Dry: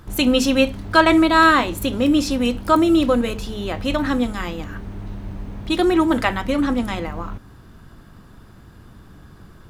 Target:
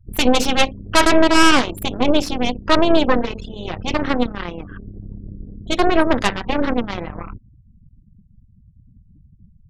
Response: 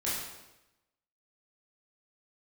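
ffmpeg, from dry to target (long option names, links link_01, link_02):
-af "afftfilt=real='re*gte(hypot(re,im),0.0316)':imag='im*gte(hypot(re,im),0.0316)':win_size=1024:overlap=0.75,aeval=exprs='0.891*(cos(1*acos(clip(val(0)/0.891,-1,1)))-cos(1*PI/2))+0.398*(cos(6*acos(clip(val(0)/0.891,-1,1)))-cos(6*PI/2))':channel_layout=same,volume=-3.5dB"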